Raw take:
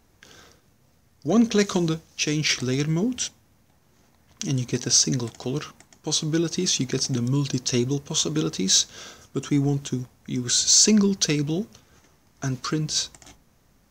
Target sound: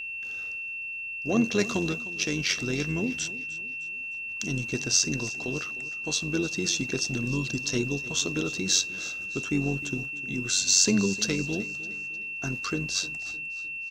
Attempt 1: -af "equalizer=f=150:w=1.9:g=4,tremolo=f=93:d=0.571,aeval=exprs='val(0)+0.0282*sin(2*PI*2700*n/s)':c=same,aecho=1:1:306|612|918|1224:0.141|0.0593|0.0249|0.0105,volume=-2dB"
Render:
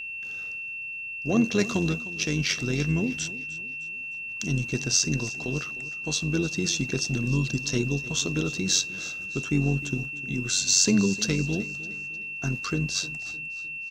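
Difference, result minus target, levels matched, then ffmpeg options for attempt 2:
125 Hz band +5.0 dB
-af "equalizer=f=150:w=1.9:g=-3,tremolo=f=93:d=0.571,aeval=exprs='val(0)+0.0282*sin(2*PI*2700*n/s)':c=same,aecho=1:1:306|612|918|1224:0.141|0.0593|0.0249|0.0105,volume=-2dB"

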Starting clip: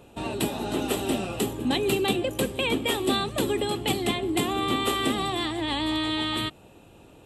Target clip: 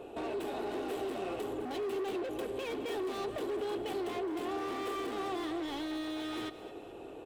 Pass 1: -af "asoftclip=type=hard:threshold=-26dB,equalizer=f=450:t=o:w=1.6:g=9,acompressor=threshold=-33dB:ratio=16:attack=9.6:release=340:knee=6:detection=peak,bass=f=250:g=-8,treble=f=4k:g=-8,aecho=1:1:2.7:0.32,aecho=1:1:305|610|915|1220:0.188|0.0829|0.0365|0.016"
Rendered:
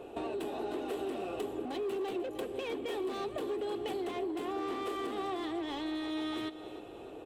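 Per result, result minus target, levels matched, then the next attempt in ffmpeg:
echo 92 ms late; hard clip: distortion -5 dB
-af "asoftclip=type=hard:threshold=-26dB,equalizer=f=450:t=o:w=1.6:g=9,acompressor=threshold=-33dB:ratio=16:attack=9.6:release=340:knee=6:detection=peak,bass=f=250:g=-8,treble=f=4k:g=-8,aecho=1:1:2.7:0.32,aecho=1:1:213|426|639|852:0.188|0.0829|0.0365|0.016"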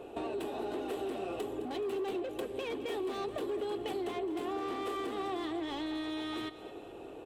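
hard clip: distortion -5 dB
-af "asoftclip=type=hard:threshold=-34dB,equalizer=f=450:t=o:w=1.6:g=9,acompressor=threshold=-33dB:ratio=16:attack=9.6:release=340:knee=6:detection=peak,bass=f=250:g=-8,treble=f=4k:g=-8,aecho=1:1:2.7:0.32,aecho=1:1:213|426|639|852:0.188|0.0829|0.0365|0.016"

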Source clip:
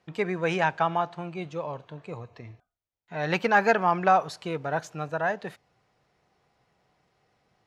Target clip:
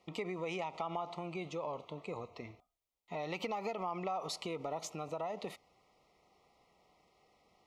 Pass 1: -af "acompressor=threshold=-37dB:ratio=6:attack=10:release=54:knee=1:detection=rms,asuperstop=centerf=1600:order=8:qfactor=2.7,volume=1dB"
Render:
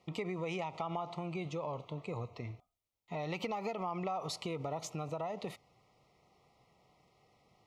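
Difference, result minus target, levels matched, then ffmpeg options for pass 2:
125 Hz band +5.5 dB
-af "acompressor=threshold=-37dB:ratio=6:attack=10:release=54:knee=1:detection=rms,asuperstop=centerf=1600:order=8:qfactor=2.7,equalizer=f=120:t=o:w=0.86:g=-12,volume=1dB"

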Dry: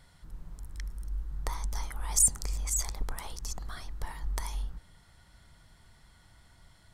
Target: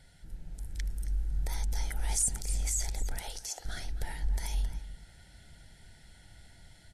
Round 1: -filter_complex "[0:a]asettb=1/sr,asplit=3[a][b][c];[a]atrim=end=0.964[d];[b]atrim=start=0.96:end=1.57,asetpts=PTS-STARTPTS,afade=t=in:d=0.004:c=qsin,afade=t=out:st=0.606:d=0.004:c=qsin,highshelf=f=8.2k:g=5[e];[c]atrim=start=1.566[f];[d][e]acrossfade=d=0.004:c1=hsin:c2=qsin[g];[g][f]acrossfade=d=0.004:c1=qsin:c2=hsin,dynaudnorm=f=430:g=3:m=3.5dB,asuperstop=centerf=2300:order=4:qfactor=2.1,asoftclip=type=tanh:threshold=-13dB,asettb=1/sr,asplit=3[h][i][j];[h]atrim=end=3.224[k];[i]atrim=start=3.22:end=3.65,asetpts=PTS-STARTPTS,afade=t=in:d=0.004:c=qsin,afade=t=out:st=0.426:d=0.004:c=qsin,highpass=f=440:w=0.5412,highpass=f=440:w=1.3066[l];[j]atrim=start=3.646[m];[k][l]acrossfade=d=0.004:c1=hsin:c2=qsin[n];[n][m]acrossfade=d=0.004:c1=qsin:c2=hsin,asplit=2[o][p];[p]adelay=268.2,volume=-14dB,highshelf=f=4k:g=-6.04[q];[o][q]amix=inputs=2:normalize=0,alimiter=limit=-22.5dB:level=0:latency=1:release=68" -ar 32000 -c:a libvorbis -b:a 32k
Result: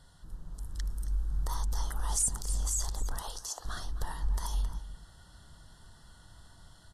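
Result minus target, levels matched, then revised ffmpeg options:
1000 Hz band +5.0 dB
-filter_complex "[0:a]asettb=1/sr,asplit=3[a][b][c];[a]atrim=end=0.964[d];[b]atrim=start=0.96:end=1.57,asetpts=PTS-STARTPTS,afade=t=in:d=0.004:c=qsin,afade=t=out:st=0.606:d=0.004:c=qsin,highshelf=f=8.2k:g=5[e];[c]atrim=start=1.566[f];[d][e]acrossfade=d=0.004:c1=hsin:c2=qsin[g];[g][f]acrossfade=d=0.004:c1=qsin:c2=hsin,dynaudnorm=f=430:g=3:m=3.5dB,asuperstop=centerf=1100:order=4:qfactor=2.1,asoftclip=type=tanh:threshold=-13dB,asettb=1/sr,asplit=3[h][i][j];[h]atrim=end=3.224[k];[i]atrim=start=3.22:end=3.65,asetpts=PTS-STARTPTS,afade=t=in:d=0.004:c=qsin,afade=t=out:st=0.426:d=0.004:c=qsin,highpass=f=440:w=0.5412,highpass=f=440:w=1.3066[l];[j]atrim=start=3.646[m];[k][l]acrossfade=d=0.004:c1=hsin:c2=qsin[n];[n][m]acrossfade=d=0.004:c1=qsin:c2=hsin,asplit=2[o][p];[p]adelay=268.2,volume=-14dB,highshelf=f=4k:g=-6.04[q];[o][q]amix=inputs=2:normalize=0,alimiter=limit=-22.5dB:level=0:latency=1:release=68" -ar 32000 -c:a libvorbis -b:a 32k

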